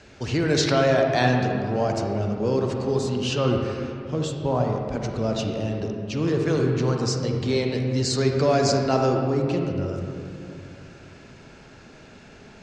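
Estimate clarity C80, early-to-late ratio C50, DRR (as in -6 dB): 3.5 dB, 2.5 dB, 2.0 dB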